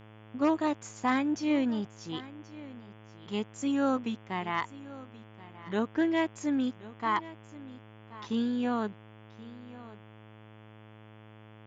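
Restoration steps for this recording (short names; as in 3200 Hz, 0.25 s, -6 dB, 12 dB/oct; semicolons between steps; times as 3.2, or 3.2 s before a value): de-hum 108.2 Hz, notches 32; inverse comb 1.079 s -18 dB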